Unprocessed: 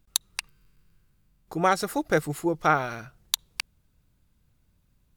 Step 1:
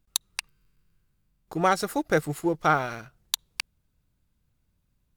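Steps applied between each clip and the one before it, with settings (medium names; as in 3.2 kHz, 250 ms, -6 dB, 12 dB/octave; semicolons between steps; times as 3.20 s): waveshaping leveller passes 1; trim -3.5 dB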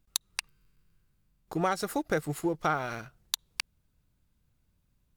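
compression 2.5:1, threshold -27 dBFS, peak gain reduction 7.5 dB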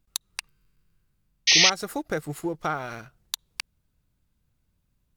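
painted sound noise, 1.47–1.70 s, 1.8–6.4 kHz -17 dBFS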